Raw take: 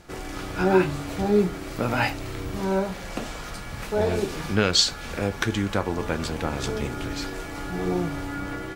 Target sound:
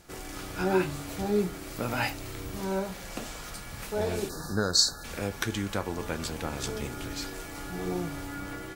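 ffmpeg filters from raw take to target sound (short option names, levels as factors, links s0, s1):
-filter_complex "[0:a]asplit=3[s0][s1][s2];[s0]afade=t=out:st=4.28:d=0.02[s3];[s1]asuperstop=centerf=2600:order=20:qfactor=1.3,afade=t=in:st=4.28:d=0.02,afade=t=out:st=5.03:d=0.02[s4];[s2]afade=t=in:st=5.03:d=0.02[s5];[s3][s4][s5]amix=inputs=3:normalize=0,volume=2.24,asoftclip=hard,volume=0.447,crystalizer=i=1.5:c=0,volume=0.473"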